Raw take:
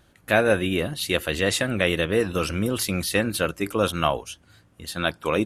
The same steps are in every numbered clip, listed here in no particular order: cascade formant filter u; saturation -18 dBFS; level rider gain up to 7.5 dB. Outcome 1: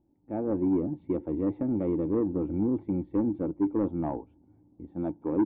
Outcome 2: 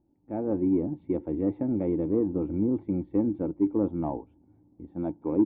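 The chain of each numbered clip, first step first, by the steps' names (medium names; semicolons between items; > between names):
cascade formant filter > level rider > saturation; cascade formant filter > saturation > level rider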